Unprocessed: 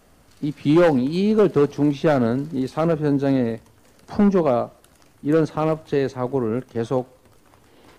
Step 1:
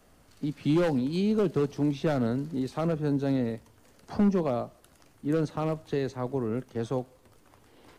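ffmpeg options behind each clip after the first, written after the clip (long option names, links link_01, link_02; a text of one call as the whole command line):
ffmpeg -i in.wav -filter_complex "[0:a]acrossover=split=230|3000[link_01][link_02][link_03];[link_02]acompressor=threshold=-30dB:ratio=1.5[link_04];[link_01][link_04][link_03]amix=inputs=3:normalize=0,volume=-5dB" out.wav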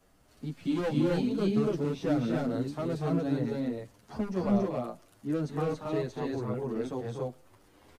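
ffmpeg -i in.wav -filter_complex "[0:a]asplit=2[link_01][link_02];[link_02]aecho=0:1:239.1|279.9:0.501|0.891[link_03];[link_01][link_03]amix=inputs=2:normalize=0,asplit=2[link_04][link_05];[link_05]adelay=8.6,afreqshift=1.6[link_06];[link_04][link_06]amix=inputs=2:normalize=1,volume=-2dB" out.wav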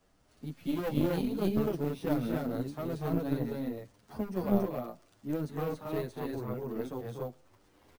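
ffmpeg -i in.wav -af "acrusher=samples=3:mix=1:aa=0.000001,aeval=exprs='0.2*(cos(1*acos(clip(val(0)/0.2,-1,1)))-cos(1*PI/2))+0.0708*(cos(2*acos(clip(val(0)/0.2,-1,1)))-cos(2*PI/2))+0.00447*(cos(7*acos(clip(val(0)/0.2,-1,1)))-cos(7*PI/2))':channel_layout=same,volume=-2.5dB" out.wav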